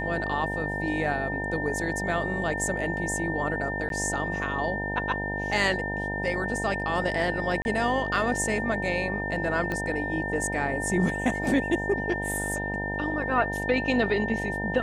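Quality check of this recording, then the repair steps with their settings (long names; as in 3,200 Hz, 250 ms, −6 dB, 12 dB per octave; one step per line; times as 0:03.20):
mains buzz 50 Hz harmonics 19 −33 dBFS
whistle 1,800 Hz −31 dBFS
0:03.89–0:03.90: drop-out 12 ms
0:07.62–0:07.65: drop-out 31 ms
0:09.72: click −17 dBFS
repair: click removal
hum removal 50 Hz, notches 19
notch filter 1,800 Hz, Q 30
repair the gap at 0:03.89, 12 ms
repair the gap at 0:07.62, 31 ms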